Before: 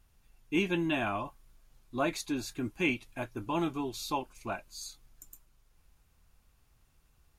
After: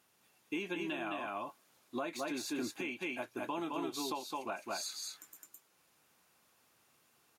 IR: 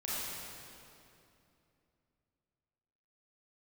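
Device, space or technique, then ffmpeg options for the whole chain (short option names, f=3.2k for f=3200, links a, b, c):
podcast mastering chain: -filter_complex "[0:a]highpass=280,asettb=1/sr,asplit=3[a][b][c];[a]atrim=end=4.634[d];[b]atrim=start=4.63:end=5.26,asetpts=PTS-STARTPTS,afade=t=in:d=0.004:c=qsin,afade=t=out:st=0.626:d=0.004:c=qsin,equalizer=f=1.7k:w=0.98:g=10.5[e];[c]atrim=start=5.256[f];[d][e]acrossfade=d=0.004:c1=hsin:c2=qsin[g];[g][f]acrossfade=d=0.004:c1=qsin:c2=hsin,highpass=80,aecho=1:1:212:0.631,deesser=0.9,acompressor=threshold=-36dB:ratio=3,alimiter=level_in=6.5dB:limit=-24dB:level=0:latency=1:release=413,volume=-6.5dB,volume=3.5dB" -ar 44100 -c:a libmp3lame -b:a 112k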